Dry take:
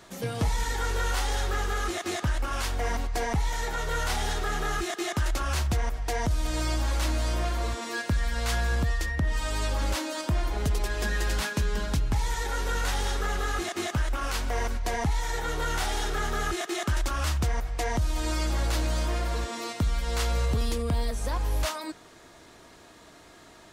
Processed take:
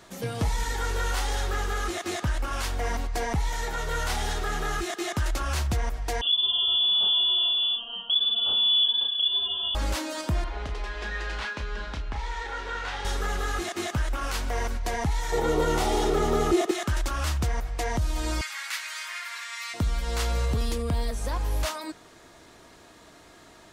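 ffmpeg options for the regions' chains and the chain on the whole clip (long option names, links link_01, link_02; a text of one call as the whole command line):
ffmpeg -i in.wav -filter_complex "[0:a]asettb=1/sr,asplit=3[link_01][link_02][link_03];[link_01]atrim=end=6.214[link_04];[link_02]atrim=start=6.21:end=9.75,asetpts=PTS-STARTPTS,afade=type=in:duration=0.004:curve=qsin,afade=type=out:start_time=3.536:duration=0.004:curve=qsin,asuperstop=centerf=1300:order=8:qfactor=0.73,asplit=2[link_05][link_06];[link_06]adelay=32,volume=-3.5dB[link_07];[link_05][link_07]amix=inputs=2:normalize=0,atrim=end_sample=156114,lowpass=frequency=3000:width_type=q:width=0.5098,lowpass=frequency=3000:width_type=q:width=0.6013,lowpass=frequency=3000:width_type=q:width=0.9,lowpass=frequency=3000:width_type=q:width=2.563,afreqshift=-3500[link_08];[link_03]atrim=start=9.746[link_09];[link_04][link_08]acrossfade=duration=0.004:curve1=hsin:curve2=qsin[link_10];[link_10][link_09]acrossfade=duration=0.004:curve1=qsin:curve2=hsin,asettb=1/sr,asplit=3[link_11][link_12][link_13];[link_11]atrim=end=10.444[link_14];[link_12]atrim=start=10.44:end=13.05,asetpts=PTS-STARTPTS,afade=type=in:duration=0.004:curve=qsin,afade=type=out:start_time=2.606:duration=0.004:curve=qsin,lowpass=3300,equalizer=frequency=140:width=0.51:gain=-14.5,asplit=2[link_15][link_16];[link_16]adelay=33,volume=-7dB[link_17];[link_15][link_17]amix=inputs=2:normalize=0,atrim=end_sample=115101[link_18];[link_13]atrim=start=13.046[link_19];[link_14][link_18]acrossfade=duration=0.004:curve1=hsin:curve2=qsin[link_20];[link_20][link_19]acrossfade=duration=0.004:curve1=qsin:curve2=hsin,asettb=1/sr,asplit=3[link_21][link_22][link_23];[link_21]atrim=end=15.324[link_24];[link_22]atrim=start=15.32:end=16.71,asetpts=PTS-STARTPTS,afade=type=in:duration=0.004:curve=qsin,afade=type=out:start_time=1.386:duration=0.004:curve=qsin,equalizer=frequency=370:width=0.44:gain=13,acrossover=split=420|3000[link_25][link_26][link_27];[link_26]acompressor=threshold=-24dB:ratio=6:attack=3.2:release=140:knee=2.83:detection=peak[link_28];[link_25][link_28][link_27]amix=inputs=3:normalize=0,bandreject=frequency=1600:width=5.3[link_29];[link_23]atrim=start=16.706[link_30];[link_24][link_29]acrossfade=duration=0.004:curve1=hsin:curve2=qsin[link_31];[link_31][link_30]acrossfade=duration=0.004:curve1=qsin:curve2=hsin,asettb=1/sr,asplit=3[link_32][link_33][link_34];[link_32]atrim=end=18.414[link_35];[link_33]atrim=start=18.41:end=19.74,asetpts=PTS-STARTPTS,afade=type=in:duration=0.004:curve=qsin,afade=type=out:start_time=1.326:duration=0.004:curve=qsin,highpass=frequency=1200:width=0.5412,highpass=frequency=1200:width=1.3066,equalizer=frequency=2100:width=2.2:gain=8.5[link_36];[link_34]atrim=start=19.736[link_37];[link_35][link_36]acrossfade=duration=0.004:curve1=hsin:curve2=qsin[link_38];[link_38][link_37]acrossfade=duration=0.004:curve1=qsin:curve2=hsin" out.wav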